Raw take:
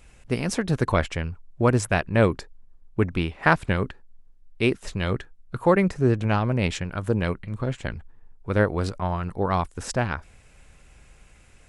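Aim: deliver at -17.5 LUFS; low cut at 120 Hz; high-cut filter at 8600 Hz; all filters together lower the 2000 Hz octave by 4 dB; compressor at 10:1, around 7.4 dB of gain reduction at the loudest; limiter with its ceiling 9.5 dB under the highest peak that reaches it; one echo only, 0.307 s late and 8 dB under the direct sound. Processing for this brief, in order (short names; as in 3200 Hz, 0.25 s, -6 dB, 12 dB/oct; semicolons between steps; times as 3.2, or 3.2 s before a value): HPF 120 Hz; LPF 8600 Hz; bell 2000 Hz -5.5 dB; compressor 10:1, threshold -22 dBFS; limiter -20 dBFS; echo 0.307 s -8 dB; gain +15.5 dB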